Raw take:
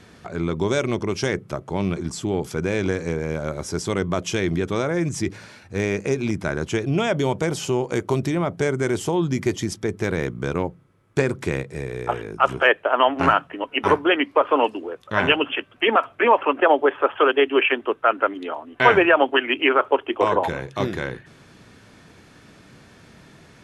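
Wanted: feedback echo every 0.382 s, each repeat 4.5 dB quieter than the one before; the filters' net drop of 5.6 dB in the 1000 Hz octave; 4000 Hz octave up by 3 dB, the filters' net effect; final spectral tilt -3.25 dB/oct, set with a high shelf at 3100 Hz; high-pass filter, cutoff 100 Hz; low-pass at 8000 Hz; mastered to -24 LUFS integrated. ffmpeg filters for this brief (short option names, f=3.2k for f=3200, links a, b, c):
-af "highpass=100,lowpass=8k,equalizer=f=1k:t=o:g=-7.5,highshelf=f=3.1k:g=-3.5,equalizer=f=4k:t=o:g=8.5,aecho=1:1:382|764|1146|1528|1910|2292|2674|3056|3438:0.596|0.357|0.214|0.129|0.0772|0.0463|0.0278|0.0167|0.01,volume=-2.5dB"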